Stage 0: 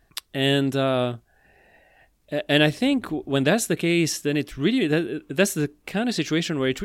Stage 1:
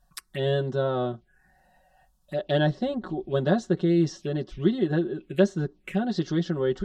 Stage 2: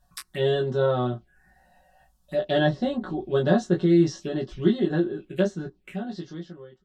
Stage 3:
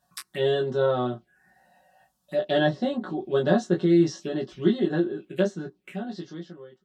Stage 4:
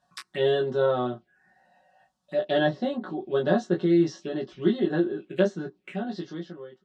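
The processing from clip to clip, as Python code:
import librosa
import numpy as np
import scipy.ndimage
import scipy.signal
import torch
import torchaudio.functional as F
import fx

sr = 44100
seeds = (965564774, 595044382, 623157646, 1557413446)

y1 = fx.env_lowpass_down(x, sr, base_hz=2900.0, full_db=-20.5)
y1 = fx.env_phaser(y1, sr, low_hz=360.0, high_hz=2400.0, full_db=-23.0)
y1 = y1 + 0.91 * np.pad(y1, (int(5.4 * sr / 1000.0), 0))[:len(y1)]
y1 = y1 * 10.0 ** (-4.0 / 20.0)
y2 = fx.fade_out_tail(y1, sr, length_s=2.18)
y2 = fx.room_early_taps(y2, sr, ms=(17, 32), db=(-3.0, -9.0))
y3 = scipy.signal.sosfilt(scipy.signal.butter(2, 160.0, 'highpass', fs=sr, output='sos'), y2)
y4 = fx.air_absorb(y3, sr, metres=80.0)
y4 = fx.rider(y4, sr, range_db=4, speed_s=2.0)
y4 = fx.low_shelf(y4, sr, hz=120.0, db=-8.0)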